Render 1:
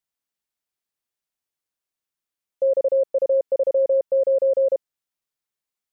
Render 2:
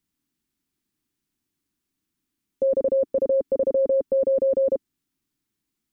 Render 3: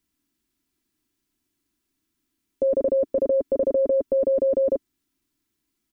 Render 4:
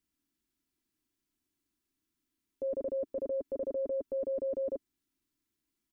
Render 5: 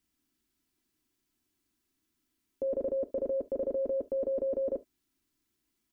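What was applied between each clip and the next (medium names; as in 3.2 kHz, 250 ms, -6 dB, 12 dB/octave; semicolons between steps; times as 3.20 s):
resonant low shelf 400 Hz +10.5 dB, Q 3; trim +5 dB
comb 3 ms, depth 42%; trim +2.5 dB
peak limiter -21.5 dBFS, peak gain reduction 8 dB; trim -7.5 dB
gated-style reverb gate 90 ms falling, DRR 11 dB; trim +4.5 dB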